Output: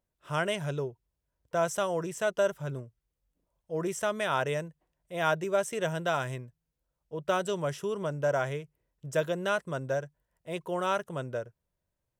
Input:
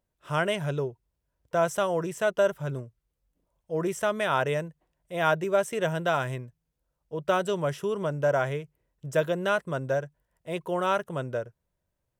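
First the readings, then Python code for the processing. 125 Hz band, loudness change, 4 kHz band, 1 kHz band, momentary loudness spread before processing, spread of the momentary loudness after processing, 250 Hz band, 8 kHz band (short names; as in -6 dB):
-3.5 dB, -3.5 dB, -1.5 dB, -3.5 dB, 12 LU, 12 LU, -3.5 dB, +1.0 dB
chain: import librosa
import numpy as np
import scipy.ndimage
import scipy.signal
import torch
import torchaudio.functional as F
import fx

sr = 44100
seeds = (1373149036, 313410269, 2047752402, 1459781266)

y = fx.dynamic_eq(x, sr, hz=6500.0, q=0.84, threshold_db=-50.0, ratio=4.0, max_db=5)
y = y * 10.0 ** (-3.5 / 20.0)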